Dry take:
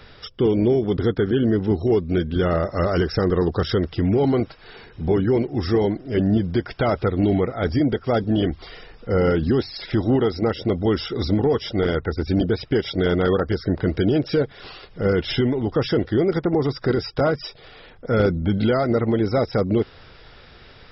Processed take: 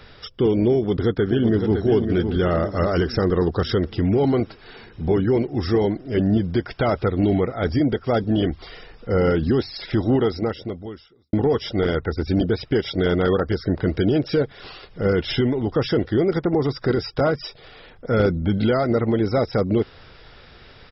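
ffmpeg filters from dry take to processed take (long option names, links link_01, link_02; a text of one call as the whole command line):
ffmpeg -i in.wav -filter_complex "[0:a]asplit=2[link_01][link_02];[link_02]afade=type=in:start_time=0.75:duration=0.01,afade=type=out:start_time=1.8:duration=0.01,aecho=0:1:560|1120|1680|2240|2800|3360:0.473151|0.236576|0.118288|0.0591439|0.029572|0.014786[link_03];[link_01][link_03]amix=inputs=2:normalize=0,asplit=2[link_04][link_05];[link_04]atrim=end=11.33,asetpts=PTS-STARTPTS,afade=type=out:start_time=10.32:duration=1.01:curve=qua[link_06];[link_05]atrim=start=11.33,asetpts=PTS-STARTPTS,afade=type=in:duration=0.004:curve=hsin[link_07];[link_06][link_07]concat=n=2:v=0:a=1" out.wav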